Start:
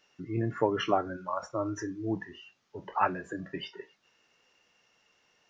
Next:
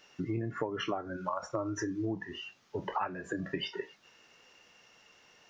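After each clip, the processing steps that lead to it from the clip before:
downward compressor 12 to 1, threshold −38 dBFS, peak gain reduction 18 dB
level +7.5 dB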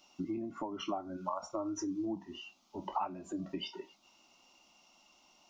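phaser with its sweep stopped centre 460 Hz, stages 6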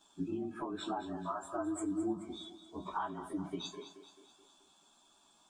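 partials spread apart or drawn together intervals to 109%
echo with a time of its own for lows and highs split 310 Hz, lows 110 ms, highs 215 ms, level −12 dB
level +2 dB

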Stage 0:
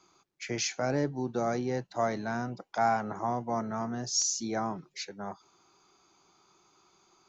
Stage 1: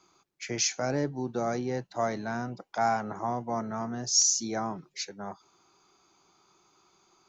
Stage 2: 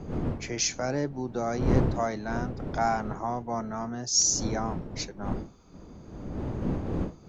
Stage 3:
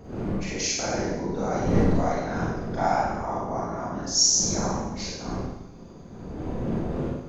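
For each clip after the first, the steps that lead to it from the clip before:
dynamic equaliser 6,100 Hz, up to +6 dB, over −47 dBFS, Q 1.4
wind on the microphone 270 Hz −33 dBFS
random phases in short frames; four-comb reverb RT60 0.94 s, combs from 32 ms, DRR −5.5 dB; level −3.5 dB

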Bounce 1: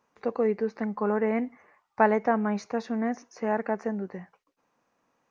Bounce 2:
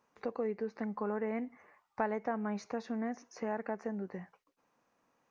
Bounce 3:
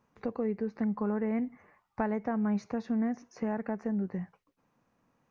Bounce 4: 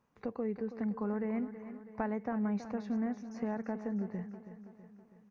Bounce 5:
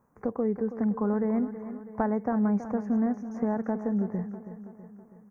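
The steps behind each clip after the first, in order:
downward compressor 2 to 1, threshold −35 dBFS, peak gain reduction 11 dB; level −2.5 dB
bass and treble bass +13 dB, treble −3 dB
repeating echo 325 ms, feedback 54%, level −12 dB; level −4 dB
Butterworth band-reject 3,500 Hz, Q 0.57; level +8 dB

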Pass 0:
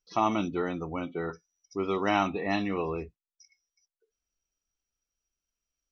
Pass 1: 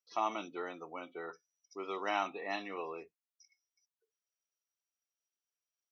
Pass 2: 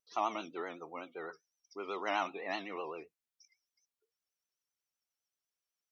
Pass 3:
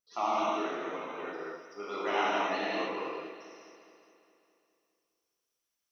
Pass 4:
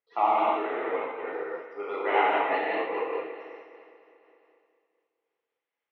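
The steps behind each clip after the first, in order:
high-pass filter 470 Hz 12 dB per octave; level −6.5 dB
pitch vibrato 7.9 Hz 95 cents
on a send: delay that swaps between a low-pass and a high-pass 103 ms, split 940 Hz, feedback 78%, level −10.5 dB; on the sum: reverb whose tail is shaped and stops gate 320 ms flat, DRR −7.5 dB; level −2.5 dB
loudspeaker in its box 170–3,000 Hz, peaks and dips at 200 Hz −7 dB, 470 Hz +10 dB, 830 Hz +8 dB, 2,000 Hz +8 dB; amplitude modulation by smooth noise, depth 55%; level +4 dB

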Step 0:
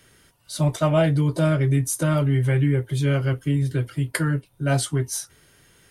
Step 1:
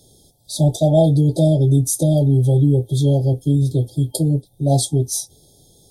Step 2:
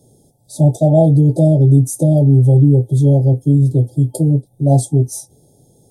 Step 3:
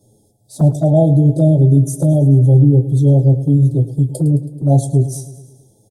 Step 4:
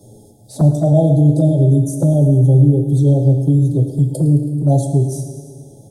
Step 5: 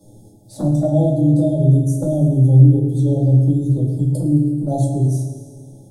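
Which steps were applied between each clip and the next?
brick-wall band-stop 880–3,200 Hz; level +5.5 dB
octave-band graphic EQ 125/250/500/1,000/2,000/4,000/8,000 Hz +10/+8/+6/+11/−10/−7/+5 dB; level −6.5 dB
flanger swept by the level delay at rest 9.9 ms, full sweep at −8.5 dBFS; repeating echo 108 ms, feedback 59%, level −14.5 dB
four-comb reverb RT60 1.2 s, combs from 27 ms, DRR 7 dB; multiband upward and downward compressor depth 40%; level −1 dB
rectangular room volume 260 cubic metres, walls furnished, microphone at 2.3 metres; level −7.5 dB

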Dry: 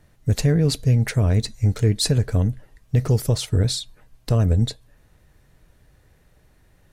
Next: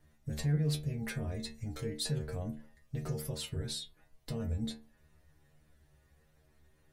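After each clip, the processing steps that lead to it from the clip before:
dynamic equaliser 6,000 Hz, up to −6 dB, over −43 dBFS, Q 1.3
brickwall limiter −15.5 dBFS, peak gain reduction 8 dB
stiff-string resonator 74 Hz, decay 0.4 s, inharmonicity 0.002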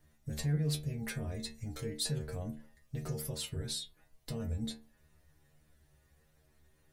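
high-shelf EQ 4,500 Hz +5 dB
level −1.5 dB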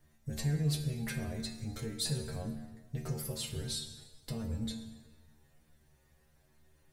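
dense smooth reverb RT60 1.4 s, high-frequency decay 0.8×, DRR 5.5 dB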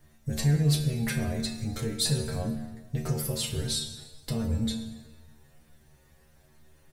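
double-tracking delay 35 ms −12 dB
level +7.5 dB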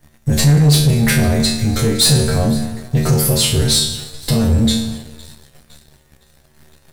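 peak hold with a decay on every bin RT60 0.47 s
feedback echo with a high-pass in the loop 510 ms, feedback 60%, high-pass 1,100 Hz, level −21.5 dB
leveller curve on the samples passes 2
level +8 dB

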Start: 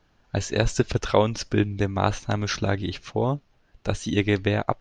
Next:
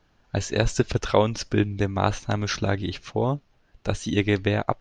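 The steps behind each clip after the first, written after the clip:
no processing that can be heard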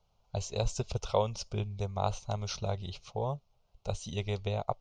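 phaser with its sweep stopped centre 710 Hz, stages 4
level −6.5 dB

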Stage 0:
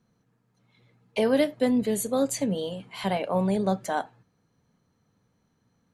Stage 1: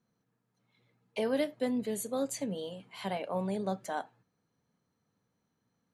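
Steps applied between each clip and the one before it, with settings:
low-shelf EQ 93 Hz −10 dB
level −7.5 dB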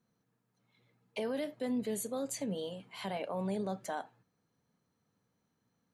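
brickwall limiter −27.5 dBFS, peak gain reduction 8 dB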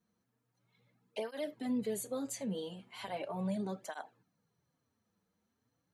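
through-zero flanger with one copy inverted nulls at 0.38 Hz, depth 8 ms
level +1 dB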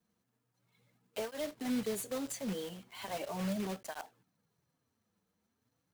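one scale factor per block 3 bits

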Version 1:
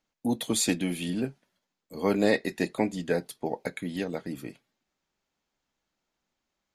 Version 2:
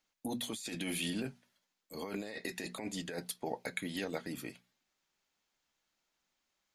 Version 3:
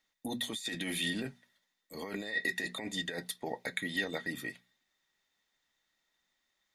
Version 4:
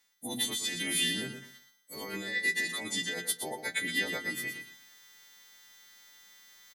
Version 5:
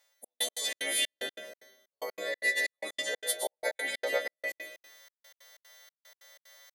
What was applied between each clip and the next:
tilt shelving filter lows −4.5 dB; mains-hum notches 60/120/180/240 Hz; compressor whose output falls as the input rises −33 dBFS, ratio −1; level −5.5 dB
hollow resonant body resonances 1,900/3,600 Hz, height 17 dB, ringing for 40 ms
every partial snapped to a pitch grid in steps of 2 semitones; reversed playback; upward compression, threshold −43 dBFS; reversed playback; repeating echo 118 ms, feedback 21%, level −8 dB
high-pass with resonance 570 Hz, resonance Q 6.2; convolution reverb RT60 0.60 s, pre-delay 105 ms, DRR 8.5 dB; gate pattern "xxx..x.xx." 186 BPM −60 dB

